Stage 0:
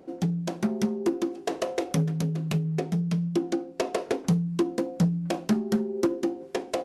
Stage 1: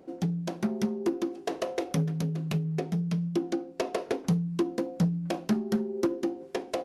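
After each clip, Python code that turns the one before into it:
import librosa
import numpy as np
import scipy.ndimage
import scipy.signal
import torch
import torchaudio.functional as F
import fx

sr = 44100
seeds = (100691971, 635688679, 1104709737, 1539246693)

y = fx.dynamic_eq(x, sr, hz=7800.0, q=2.8, threshold_db=-59.0, ratio=4.0, max_db=-5)
y = y * 10.0 ** (-2.5 / 20.0)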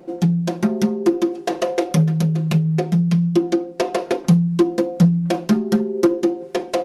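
y = x + 0.65 * np.pad(x, (int(5.7 * sr / 1000.0), 0))[:len(x)]
y = y * 10.0 ** (8.0 / 20.0)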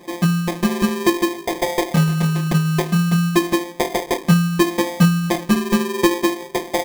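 y = fx.sample_hold(x, sr, seeds[0], rate_hz=1400.0, jitter_pct=0)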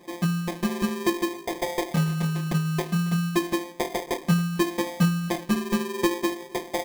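y = x + 10.0 ** (-24.0 / 20.0) * np.pad(x, (int(273 * sr / 1000.0), 0))[:len(x)]
y = y * 10.0 ** (-7.5 / 20.0)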